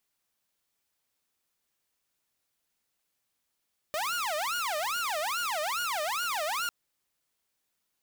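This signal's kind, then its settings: siren wail 599–1440 Hz 2.4/s saw -26.5 dBFS 2.75 s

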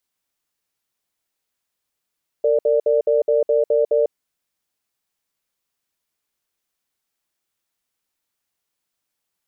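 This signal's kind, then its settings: cadence 456 Hz, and 588 Hz, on 0.15 s, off 0.06 s, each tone -16.5 dBFS 1.62 s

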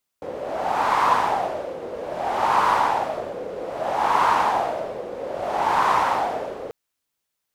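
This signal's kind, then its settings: wind-like swept noise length 6.49 s, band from 500 Hz, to 1000 Hz, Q 4.6, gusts 4, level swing 14 dB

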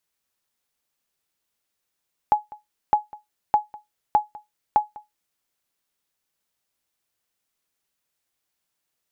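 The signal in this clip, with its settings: sonar ping 842 Hz, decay 0.17 s, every 0.61 s, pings 5, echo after 0.20 s, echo -22 dB -8.5 dBFS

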